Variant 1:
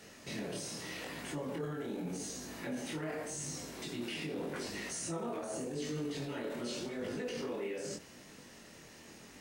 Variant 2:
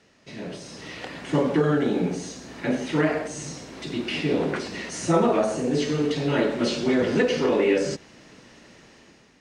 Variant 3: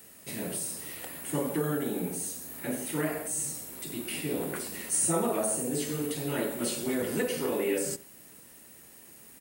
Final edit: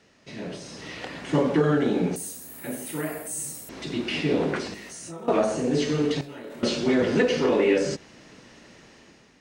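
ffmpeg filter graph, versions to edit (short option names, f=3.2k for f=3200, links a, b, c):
-filter_complex "[0:a]asplit=2[a][b];[1:a]asplit=4[c][d][e][f];[c]atrim=end=2.162[g];[2:a]atrim=start=2.158:end=3.692[h];[d]atrim=start=3.688:end=4.742[i];[a]atrim=start=4.738:end=5.282[j];[e]atrim=start=5.278:end=6.212[k];[b]atrim=start=6.208:end=6.632[l];[f]atrim=start=6.628[m];[g][h]acrossfade=d=0.004:c1=hsin:c2=hsin[n];[n][i]acrossfade=d=0.004:c1=hsin:c2=hsin[o];[o][j]acrossfade=d=0.004:c1=hsin:c2=hsin[p];[p][k]acrossfade=d=0.004:c1=hsin:c2=hsin[q];[q][l]acrossfade=d=0.004:c1=hsin:c2=hsin[r];[r][m]acrossfade=d=0.004:c1=hsin:c2=hsin"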